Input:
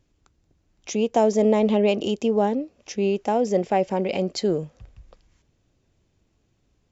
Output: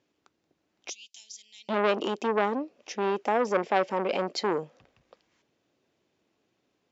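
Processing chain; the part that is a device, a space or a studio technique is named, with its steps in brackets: 0.90–1.69 s: inverse Chebyshev high-pass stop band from 1.4 kHz, stop band 50 dB; public-address speaker with an overloaded transformer (transformer saturation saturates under 1.2 kHz; band-pass 290–5100 Hz)

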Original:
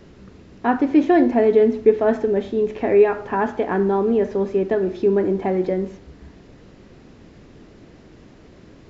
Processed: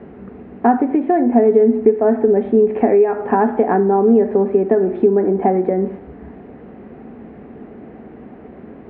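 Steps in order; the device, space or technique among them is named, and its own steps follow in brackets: bass amplifier (compression 6:1, threshold -22 dBFS, peak gain reduction 13.5 dB; cabinet simulation 63–2200 Hz, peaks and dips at 110 Hz -8 dB, 230 Hz +10 dB, 430 Hz +7 dB, 750 Hz +10 dB); trim +5 dB

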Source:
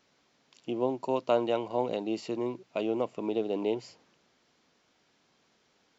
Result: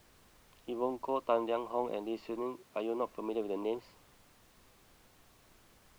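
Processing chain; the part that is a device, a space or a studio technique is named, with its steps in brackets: horn gramophone (band-pass 210–3100 Hz; peaking EQ 1.1 kHz +10 dB 0.29 oct; wow and flutter; pink noise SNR 25 dB); 2.43–3.03 s: high-pass 98 Hz; trim -5 dB

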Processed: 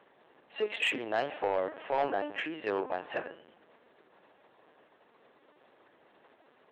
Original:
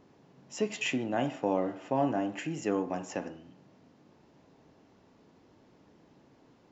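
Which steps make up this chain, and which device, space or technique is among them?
talking toy (LPC vocoder at 8 kHz pitch kept; high-pass 480 Hz 12 dB/octave; peaking EQ 1.7 kHz +5.5 dB 0.29 oct; saturation -25.5 dBFS, distortion -15 dB); trim +5 dB

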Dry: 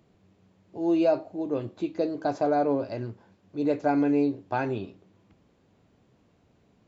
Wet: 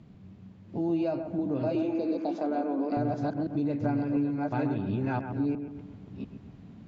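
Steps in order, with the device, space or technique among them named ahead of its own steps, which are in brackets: chunks repeated in reverse 694 ms, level -0.5 dB; 1.85–2.30 s: spectral replace 1–2.7 kHz; jukebox (low-pass 5.4 kHz 12 dB/octave; resonant low shelf 300 Hz +8 dB, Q 1.5; compression 5:1, threshold -31 dBFS, peak gain reduction 17.5 dB); 1.75–2.97 s: steep high-pass 220 Hz 36 dB/octave; bucket-brigade echo 131 ms, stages 2048, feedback 48%, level -8.5 dB; trim +3.5 dB

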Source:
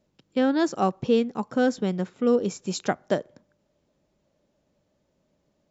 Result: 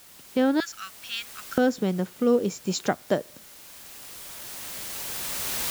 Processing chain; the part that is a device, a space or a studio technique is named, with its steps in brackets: 0.60–1.58 s: elliptic high-pass 1.4 kHz, stop band 40 dB; cheap recorder with automatic gain (white noise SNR 22 dB; recorder AGC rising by 9 dB/s)

